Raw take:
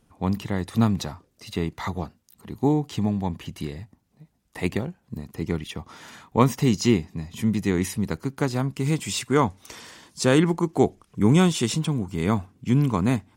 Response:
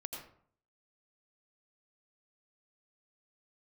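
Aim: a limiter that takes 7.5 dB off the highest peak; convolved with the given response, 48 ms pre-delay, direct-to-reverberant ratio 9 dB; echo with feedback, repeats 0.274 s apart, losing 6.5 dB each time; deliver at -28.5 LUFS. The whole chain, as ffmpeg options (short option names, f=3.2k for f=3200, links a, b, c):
-filter_complex "[0:a]alimiter=limit=-11dB:level=0:latency=1,aecho=1:1:274|548|822|1096|1370|1644:0.473|0.222|0.105|0.0491|0.0231|0.0109,asplit=2[a][b];[1:a]atrim=start_sample=2205,adelay=48[c];[b][c]afir=irnorm=-1:irlink=0,volume=-7.5dB[d];[a][d]amix=inputs=2:normalize=0,volume=-4dB"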